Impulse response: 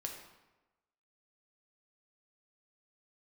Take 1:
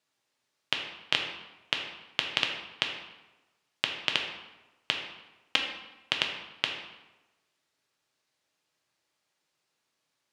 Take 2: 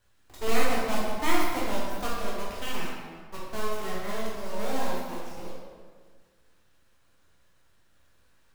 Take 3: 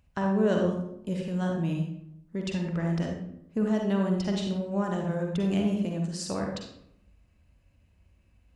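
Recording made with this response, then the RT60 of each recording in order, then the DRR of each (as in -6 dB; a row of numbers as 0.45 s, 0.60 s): 1; 1.1 s, 1.6 s, 0.80 s; 1.5 dB, -6.5 dB, 0.5 dB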